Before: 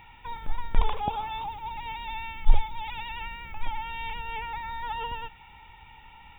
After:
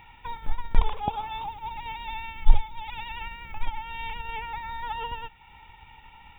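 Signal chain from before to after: transient shaper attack +3 dB, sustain -4 dB

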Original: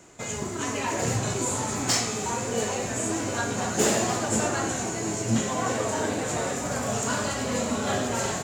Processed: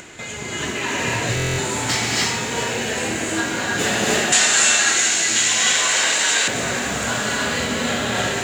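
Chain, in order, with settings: high-order bell 2.5 kHz +8.5 dB; feedback comb 80 Hz, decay 1.5 s, harmonics all, mix 60%; gated-style reverb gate 340 ms rising, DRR -3 dB; upward compressor, threshold -36 dBFS; 4.32–6.48 s: frequency weighting ITU-R 468; buffer glitch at 1.35 s, samples 1024, times 9; bit-crushed delay 391 ms, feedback 80%, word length 7-bit, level -14.5 dB; trim +5.5 dB

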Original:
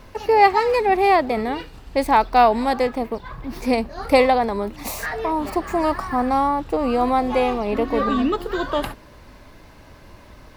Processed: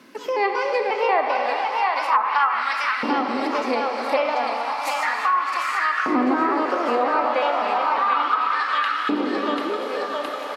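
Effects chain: pitch shift switched off and on +2.5 st, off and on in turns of 181 ms; level rider gain up to 7 dB; high-order bell 580 Hz -8 dB; on a send: bouncing-ball echo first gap 740 ms, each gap 0.9×, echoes 5; on the sum: Schroeder reverb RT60 3.8 s, combs from 30 ms, DRR 4 dB; LFO high-pass saw up 0.33 Hz 290–1600 Hz; high-pass 140 Hz 24 dB/octave; low-pass that closes with the level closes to 850 Hz, closed at -5 dBFS; in parallel at +3 dB: compression, threshold -24 dBFS, peak gain reduction 15.5 dB; on the sum: trim -8.5 dB

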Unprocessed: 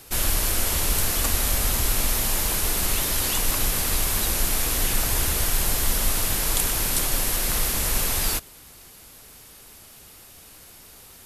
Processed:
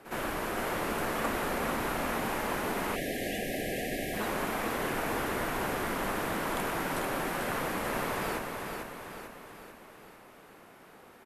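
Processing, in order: three-band isolator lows -23 dB, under 160 Hz, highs -22 dB, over 2.1 kHz; on a send: feedback delay 444 ms, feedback 52%, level -5 dB; on the sum: spectral selection erased 2.96–4.20 s, 780–1600 Hz; pre-echo 62 ms -12 dB

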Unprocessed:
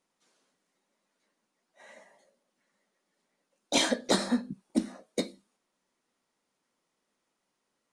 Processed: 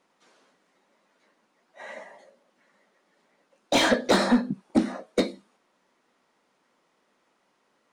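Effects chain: bass shelf 290 Hz +7.5 dB; overdrive pedal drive 21 dB, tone 1.8 kHz, clips at -9 dBFS

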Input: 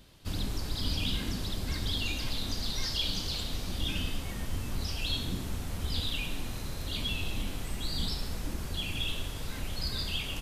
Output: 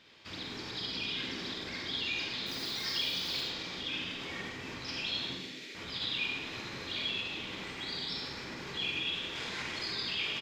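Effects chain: 9.35–9.91 s: one-bit delta coder 64 kbps, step -33 dBFS; distance through air 210 m; peak limiter -29.5 dBFS, peak gain reduction 10.5 dB; 5.35–5.75 s: inverse Chebyshev high-pass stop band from 950 Hz, stop band 40 dB; frequency-shifting echo 99 ms, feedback 65%, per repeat +65 Hz, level -11 dB; 2.46–3.43 s: modulation noise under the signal 27 dB; tilt EQ +3 dB/octave; reverberation RT60 0.45 s, pre-delay 42 ms, DRR 0.5 dB; trim -1.5 dB

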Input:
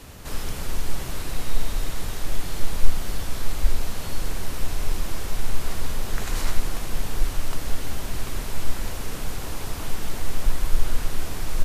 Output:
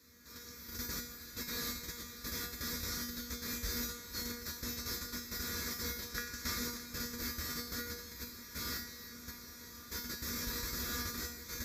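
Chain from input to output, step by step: treble shelf 4.8 kHz +10 dB; gate -18 dBFS, range -13 dB; high-pass 64 Hz 24 dB/octave; peaking EQ 120 Hz -10.5 dB 0.6 oct; static phaser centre 2.9 kHz, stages 6; feedback comb 240 Hz, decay 0.57 s, harmonics all, mix 90%; echo whose repeats swap between lows and highs 154 ms, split 1.2 kHz, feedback 82%, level -14 dB; trim +11.5 dB

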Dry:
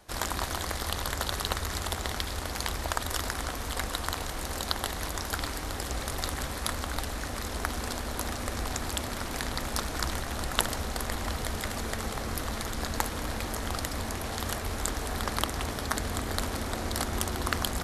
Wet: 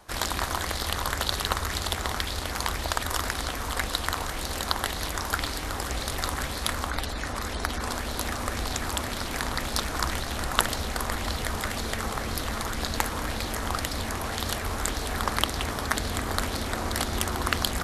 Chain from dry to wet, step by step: 6.89–7.93 s: spectral gate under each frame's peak -30 dB strong; sweeping bell 1.9 Hz 990–4400 Hz +6 dB; trim +2 dB

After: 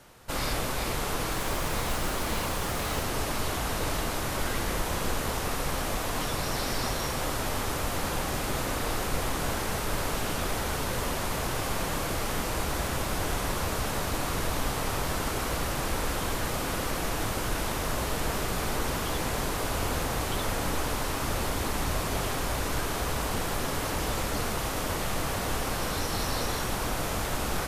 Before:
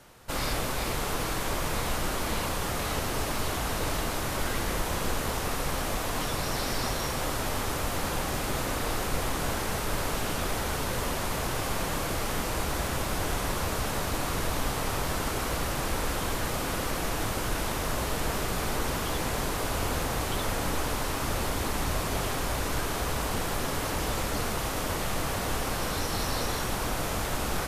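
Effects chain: 1.31–3.03 s: modulation noise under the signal 20 dB

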